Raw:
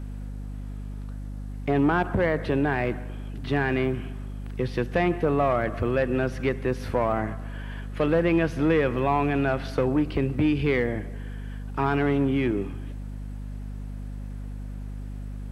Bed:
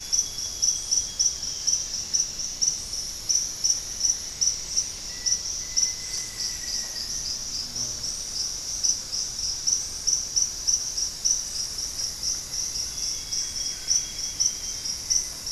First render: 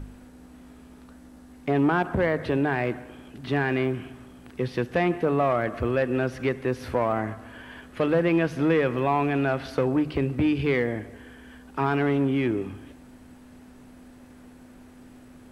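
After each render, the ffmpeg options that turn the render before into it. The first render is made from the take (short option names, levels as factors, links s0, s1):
-af "bandreject=f=50:t=h:w=4,bandreject=f=100:t=h:w=4,bandreject=f=150:t=h:w=4,bandreject=f=200:t=h:w=4"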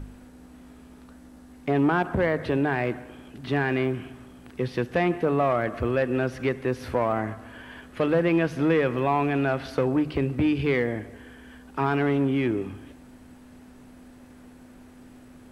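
-af anull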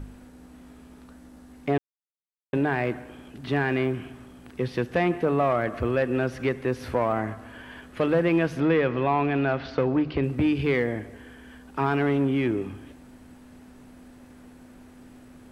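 -filter_complex "[0:a]asettb=1/sr,asplit=3[s0][s1][s2];[s0]atrim=end=8.604[s3];[s1]atrim=start=8.6:end=10.24,asetpts=PTS-STARTPTS,afade=t=in:d=0.004:c=qsin,afade=t=out:st=1.636:d=0.004:c=qsin,lowpass=f=5100:w=0.5412,lowpass=f=5100:w=1.3066[s4];[s2]atrim=start=10.236[s5];[s3][s4]acrossfade=d=0.004:c1=hsin:c2=qsin[s6];[s6][s5]acrossfade=d=0.004:c1=qsin:c2=hsin,asplit=3[s7][s8][s9];[s7]atrim=end=1.78,asetpts=PTS-STARTPTS,afade=t=out:st=1.776:d=0.004:c=hsin[s10];[s8]atrim=start=1.78:end=2.53,asetpts=PTS-STARTPTS,volume=0[s11];[s9]atrim=start=2.53,asetpts=PTS-STARTPTS,afade=t=in:d=0.004:c=hsin[s12];[s10][s11][s12]concat=n=3:v=0:a=1"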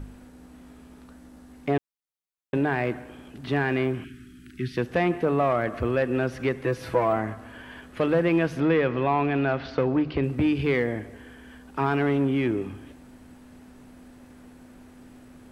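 -filter_complex "[0:a]asettb=1/sr,asplit=3[s0][s1][s2];[s0]atrim=end=4.044[s3];[s1]atrim=start=4.04:end=4.77,asetpts=PTS-STARTPTS,afade=t=in:d=0.004:c=qsin,afade=t=out:st=0.726:d=0.004:c=qsin,asuperstop=centerf=710:order=12:qfactor=0.72[s4];[s2]atrim=start=4.766[s5];[s3][s4]acrossfade=d=0.004:c1=hsin:c2=qsin[s6];[s6][s5]acrossfade=d=0.004:c1=qsin:c2=hsin,asettb=1/sr,asplit=3[s7][s8][s9];[s7]atrim=end=6.634[s10];[s8]atrim=start=6.63:end=7.16,asetpts=PTS-STARTPTS,afade=t=in:d=0.004:c=qsin,afade=t=out:st=0.526:d=0.004:c=qsin,aecho=1:1:6.1:0.62,atrim=end_sample=23373[s11];[s9]atrim=start=7.156[s12];[s10][s11]acrossfade=d=0.004:c1=hsin:c2=qsin[s13];[s13][s12]acrossfade=d=0.004:c1=qsin:c2=hsin"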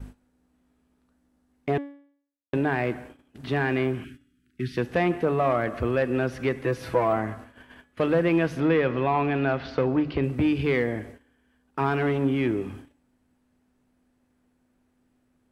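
-af "agate=range=0.1:threshold=0.00891:ratio=16:detection=peak,bandreject=f=282.8:t=h:w=4,bandreject=f=565.6:t=h:w=4,bandreject=f=848.4:t=h:w=4,bandreject=f=1131.2:t=h:w=4,bandreject=f=1414:t=h:w=4,bandreject=f=1696.8:t=h:w=4,bandreject=f=1979.6:t=h:w=4,bandreject=f=2262.4:t=h:w=4,bandreject=f=2545.2:t=h:w=4,bandreject=f=2828:t=h:w=4,bandreject=f=3110.8:t=h:w=4,bandreject=f=3393.6:t=h:w=4,bandreject=f=3676.4:t=h:w=4,bandreject=f=3959.2:t=h:w=4,bandreject=f=4242:t=h:w=4,bandreject=f=4524.8:t=h:w=4,bandreject=f=4807.6:t=h:w=4,bandreject=f=5090.4:t=h:w=4,bandreject=f=5373.2:t=h:w=4,bandreject=f=5656:t=h:w=4,bandreject=f=5938.8:t=h:w=4,bandreject=f=6221.6:t=h:w=4,bandreject=f=6504.4:t=h:w=4,bandreject=f=6787.2:t=h:w=4,bandreject=f=7070:t=h:w=4,bandreject=f=7352.8:t=h:w=4,bandreject=f=7635.6:t=h:w=4,bandreject=f=7918.4:t=h:w=4,bandreject=f=8201.2:t=h:w=4,bandreject=f=8484:t=h:w=4,bandreject=f=8766.8:t=h:w=4,bandreject=f=9049.6:t=h:w=4,bandreject=f=9332.4:t=h:w=4,bandreject=f=9615.2:t=h:w=4,bandreject=f=9898:t=h:w=4,bandreject=f=10180.8:t=h:w=4,bandreject=f=10463.6:t=h:w=4"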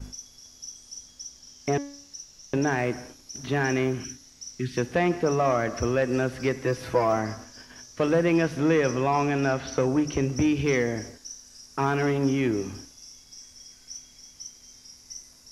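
-filter_complex "[1:a]volume=0.126[s0];[0:a][s0]amix=inputs=2:normalize=0"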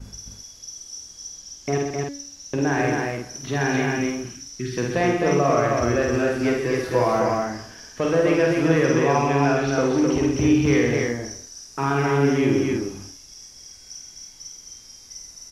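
-filter_complex "[0:a]asplit=2[s0][s1];[s1]adelay=50,volume=0.708[s2];[s0][s2]amix=inputs=2:normalize=0,asplit=2[s3][s4];[s4]aecho=0:1:75.8|128.3|259.5:0.355|0.398|0.708[s5];[s3][s5]amix=inputs=2:normalize=0"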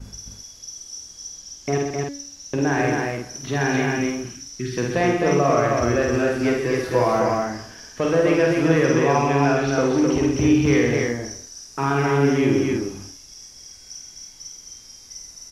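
-af "volume=1.12"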